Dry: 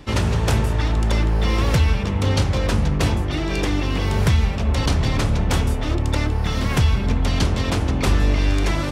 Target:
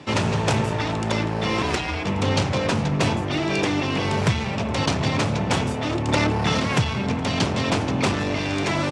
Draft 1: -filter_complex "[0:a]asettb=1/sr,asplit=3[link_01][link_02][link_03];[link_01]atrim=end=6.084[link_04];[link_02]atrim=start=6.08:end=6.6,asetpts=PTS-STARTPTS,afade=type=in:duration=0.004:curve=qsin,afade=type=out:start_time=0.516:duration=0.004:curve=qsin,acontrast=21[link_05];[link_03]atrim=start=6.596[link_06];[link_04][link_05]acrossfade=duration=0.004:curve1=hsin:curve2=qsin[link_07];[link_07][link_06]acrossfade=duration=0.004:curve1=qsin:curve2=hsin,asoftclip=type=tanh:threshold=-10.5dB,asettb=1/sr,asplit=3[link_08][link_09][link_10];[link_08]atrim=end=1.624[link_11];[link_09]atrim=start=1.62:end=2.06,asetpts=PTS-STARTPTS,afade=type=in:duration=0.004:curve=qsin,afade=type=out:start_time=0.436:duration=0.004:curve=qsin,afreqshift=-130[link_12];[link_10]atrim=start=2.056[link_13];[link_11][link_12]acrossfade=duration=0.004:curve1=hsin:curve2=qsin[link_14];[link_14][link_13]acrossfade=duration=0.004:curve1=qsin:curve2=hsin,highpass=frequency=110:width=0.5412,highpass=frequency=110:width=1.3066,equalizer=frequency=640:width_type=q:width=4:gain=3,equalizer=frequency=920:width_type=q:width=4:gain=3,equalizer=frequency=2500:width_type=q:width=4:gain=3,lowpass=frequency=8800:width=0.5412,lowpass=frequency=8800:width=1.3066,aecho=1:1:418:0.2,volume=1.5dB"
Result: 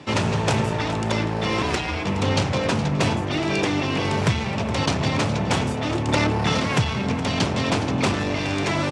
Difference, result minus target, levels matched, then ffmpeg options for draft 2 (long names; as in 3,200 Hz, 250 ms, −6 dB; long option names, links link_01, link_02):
echo-to-direct +8 dB
-filter_complex "[0:a]asettb=1/sr,asplit=3[link_01][link_02][link_03];[link_01]atrim=end=6.084[link_04];[link_02]atrim=start=6.08:end=6.6,asetpts=PTS-STARTPTS,afade=type=in:duration=0.004:curve=qsin,afade=type=out:start_time=0.516:duration=0.004:curve=qsin,acontrast=21[link_05];[link_03]atrim=start=6.596[link_06];[link_04][link_05]acrossfade=duration=0.004:curve1=hsin:curve2=qsin[link_07];[link_07][link_06]acrossfade=duration=0.004:curve1=qsin:curve2=hsin,asoftclip=type=tanh:threshold=-10.5dB,asettb=1/sr,asplit=3[link_08][link_09][link_10];[link_08]atrim=end=1.624[link_11];[link_09]atrim=start=1.62:end=2.06,asetpts=PTS-STARTPTS,afade=type=in:duration=0.004:curve=qsin,afade=type=out:start_time=0.436:duration=0.004:curve=qsin,afreqshift=-130[link_12];[link_10]atrim=start=2.056[link_13];[link_11][link_12]acrossfade=duration=0.004:curve1=hsin:curve2=qsin[link_14];[link_14][link_13]acrossfade=duration=0.004:curve1=qsin:curve2=hsin,highpass=frequency=110:width=0.5412,highpass=frequency=110:width=1.3066,equalizer=frequency=640:width_type=q:width=4:gain=3,equalizer=frequency=920:width_type=q:width=4:gain=3,equalizer=frequency=2500:width_type=q:width=4:gain=3,lowpass=frequency=8800:width=0.5412,lowpass=frequency=8800:width=1.3066,aecho=1:1:418:0.0794,volume=1.5dB"